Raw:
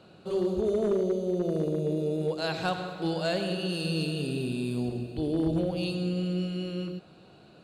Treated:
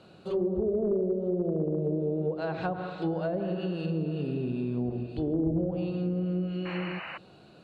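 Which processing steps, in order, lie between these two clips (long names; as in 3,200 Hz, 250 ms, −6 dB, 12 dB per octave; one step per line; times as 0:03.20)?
treble cut that deepens with the level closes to 560 Hz, closed at −23.5 dBFS
sound drawn into the spectrogram noise, 0:06.65–0:07.18, 490–3,000 Hz −40 dBFS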